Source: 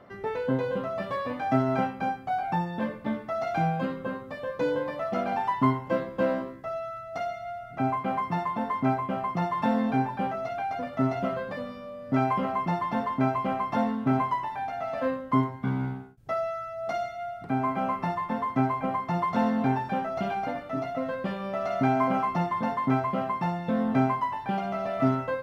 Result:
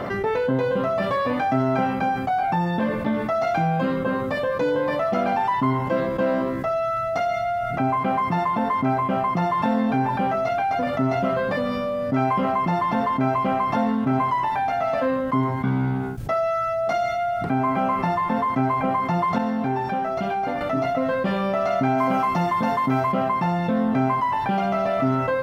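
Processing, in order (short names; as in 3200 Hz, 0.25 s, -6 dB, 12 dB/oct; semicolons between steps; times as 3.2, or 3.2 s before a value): 19.38–20.61 resonator 390 Hz, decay 0.72 s, mix 70%; 21.98–23.12 high shelf 4300 Hz +8 dB; fast leveller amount 70%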